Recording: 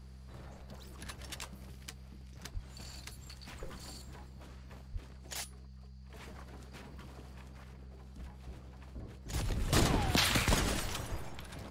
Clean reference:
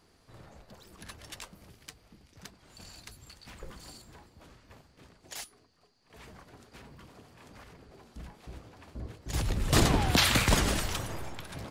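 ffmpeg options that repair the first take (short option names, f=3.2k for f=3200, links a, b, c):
-filter_complex "[0:a]bandreject=f=64.8:t=h:w=4,bandreject=f=129.6:t=h:w=4,bandreject=f=194.4:t=h:w=4,asplit=3[a][b][c];[a]afade=t=out:st=2.53:d=0.02[d];[b]highpass=f=140:w=0.5412,highpass=f=140:w=1.3066,afade=t=in:st=2.53:d=0.02,afade=t=out:st=2.65:d=0.02[e];[c]afade=t=in:st=2.65:d=0.02[f];[d][e][f]amix=inputs=3:normalize=0,asplit=3[g][h][i];[g]afade=t=out:st=4.92:d=0.02[j];[h]highpass=f=140:w=0.5412,highpass=f=140:w=1.3066,afade=t=in:st=4.92:d=0.02,afade=t=out:st=5.04:d=0.02[k];[i]afade=t=in:st=5.04:d=0.02[l];[j][k][l]amix=inputs=3:normalize=0,asplit=3[m][n][o];[m]afade=t=out:st=11.1:d=0.02[p];[n]highpass=f=140:w=0.5412,highpass=f=140:w=1.3066,afade=t=in:st=11.1:d=0.02,afade=t=out:st=11.22:d=0.02[q];[o]afade=t=in:st=11.22:d=0.02[r];[p][q][r]amix=inputs=3:normalize=0,asetnsamples=n=441:p=0,asendcmd='7.41 volume volume 5dB',volume=0dB"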